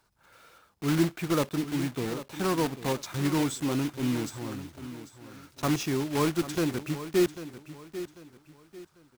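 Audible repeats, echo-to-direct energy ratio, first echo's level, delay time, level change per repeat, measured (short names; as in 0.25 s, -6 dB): 3, -12.5 dB, -13.0 dB, 0.794 s, -9.5 dB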